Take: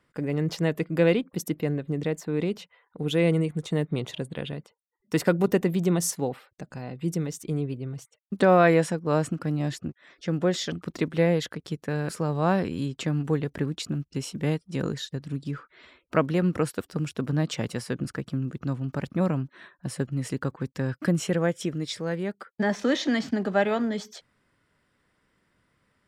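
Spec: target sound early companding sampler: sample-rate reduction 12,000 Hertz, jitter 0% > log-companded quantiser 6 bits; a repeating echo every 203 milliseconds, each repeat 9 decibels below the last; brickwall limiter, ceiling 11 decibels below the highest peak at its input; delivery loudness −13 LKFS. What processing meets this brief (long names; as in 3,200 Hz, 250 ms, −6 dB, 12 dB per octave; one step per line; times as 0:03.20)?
brickwall limiter −20.5 dBFS
repeating echo 203 ms, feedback 35%, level −9 dB
sample-rate reduction 12,000 Hz, jitter 0%
log-companded quantiser 6 bits
level +18 dB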